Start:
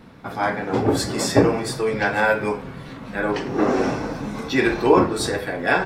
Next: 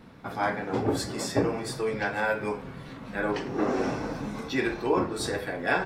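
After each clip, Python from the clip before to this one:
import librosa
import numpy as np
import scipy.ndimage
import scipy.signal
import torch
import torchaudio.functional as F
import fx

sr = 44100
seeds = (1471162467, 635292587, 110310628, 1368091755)

y = fx.rider(x, sr, range_db=3, speed_s=0.5)
y = F.gain(torch.from_numpy(y), -7.5).numpy()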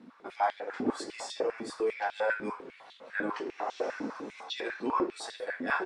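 y = scipy.signal.sosfilt(scipy.signal.butter(6, 9500.0, 'lowpass', fs=sr, output='sos'), x)
y = fx.filter_held_highpass(y, sr, hz=10.0, low_hz=250.0, high_hz=3400.0)
y = F.gain(torch.from_numpy(y), -8.5).numpy()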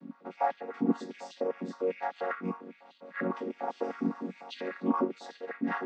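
y = fx.chord_vocoder(x, sr, chord='major triad', root=54)
y = fx.rider(y, sr, range_db=4, speed_s=2.0)
y = F.gain(torch.from_numpy(y), 1.0).numpy()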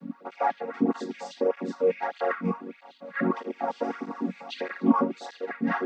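y = fx.flanger_cancel(x, sr, hz=1.6, depth_ms=3.3)
y = F.gain(torch.from_numpy(y), 8.5).numpy()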